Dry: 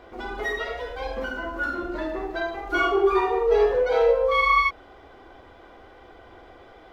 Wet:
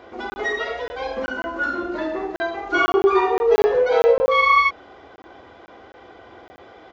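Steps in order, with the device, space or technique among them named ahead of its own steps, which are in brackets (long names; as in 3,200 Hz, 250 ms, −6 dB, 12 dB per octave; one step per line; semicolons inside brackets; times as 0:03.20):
call with lost packets (high-pass filter 100 Hz 12 dB per octave; downsampling to 16,000 Hz; dropped packets of 20 ms random)
level +4 dB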